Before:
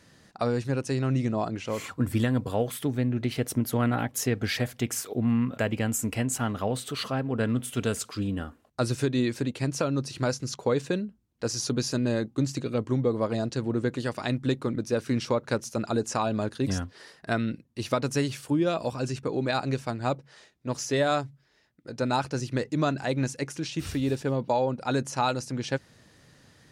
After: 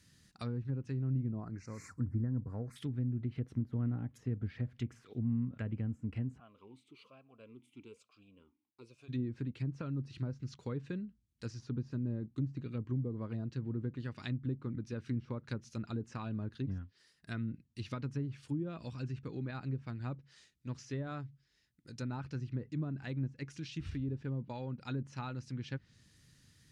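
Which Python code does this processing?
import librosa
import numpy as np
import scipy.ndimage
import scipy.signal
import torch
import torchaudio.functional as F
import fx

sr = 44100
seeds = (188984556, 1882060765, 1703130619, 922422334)

y = fx.cheby1_bandstop(x, sr, low_hz=1800.0, high_hz=5500.0, order=2, at=(1.4, 2.76))
y = fx.vowel_sweep(y, sr, vowels='a-u', hz=1.1, at=(6.38, 9.08), fade=0.02)
y = fx.edit(y, sr, fx.fade_down_up(start_s=16.62, length_s=0.8, db=-9.5, fade_s=0.27), tone=tone)
y = fx.tone_stack(y, sr, knobs='6-0-2')
y = fx.env_lowpass_down(y, sr, base_hz=690.0, full_db=-40.5)
y = fx.high_shelf(y, sr, hz=10000.0, db=4.5)
y = y * 10.0 ** (8.5 / 20.0)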